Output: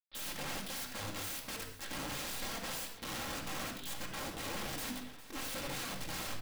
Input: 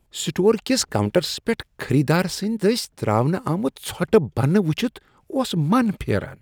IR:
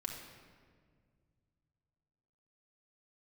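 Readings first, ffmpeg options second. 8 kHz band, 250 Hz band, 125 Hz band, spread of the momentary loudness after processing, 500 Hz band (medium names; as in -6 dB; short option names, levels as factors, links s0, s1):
-10.0 dB, -25.0 dB, -26.0 dB, 3 LU, -26.0 dB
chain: -filter_complex "[0:a]aresample=11025,acrusher=bits=6:dc=4:mix=0:aa=0.000001,aresample=44100,adynamicequalizer=threshold=0.0316:dfrequency=350:dqfactor=2.1:tfrequency=350:tqfactor=2.1:attack=5:release=100:ratio=0.375:range=1.5:mode=cutabove:tftype=bell,areverse,acompressor=threshold=0.0316:ratio=12,areverse,asoftclip=type=tanh:threshold=0.0631,flanger=delay=17.5:depth=6.3:speed=2.2,lowpass=f=3500:t=q:w=2.1,bandreject=f=50:t=h:w=6,bandreject=f=100:t=h:w=6,bandreject=f=150:t=h:w=6,bandreject=f=200:t=h:w=6,bandreject=f=250:t=h:w=6,bandreject=f=300:t=h:w=6,bandreject=f=350:t=h:w=6,bandreject=f=400:t=h:w=6,bandreject=f=450:t=h:w=6,aeval=exprs='(mod(84.1*val(0)+1,2)-1)/84.1':c=same,aecho=1:1:406:0.158[s0];[1:a]atrim=start_sample=2205,atrim=end_sample=6174[s1];[s0][s1]afir=irnorm=-1:irlink=0,volume=1.58"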